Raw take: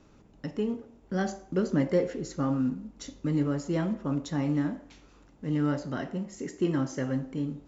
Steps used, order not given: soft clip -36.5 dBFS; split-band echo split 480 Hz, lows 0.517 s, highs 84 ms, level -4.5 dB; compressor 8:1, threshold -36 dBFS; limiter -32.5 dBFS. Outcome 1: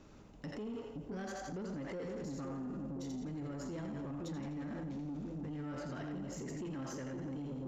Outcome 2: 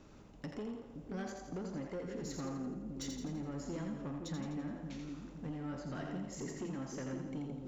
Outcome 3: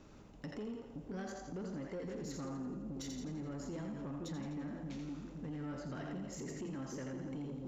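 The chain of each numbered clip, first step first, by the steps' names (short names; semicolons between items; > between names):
split-band echo > limiter > soft clip > compressor; compressor > soft clip > split-band echo > limiter; compressor > split-band echo > limiter > soft clip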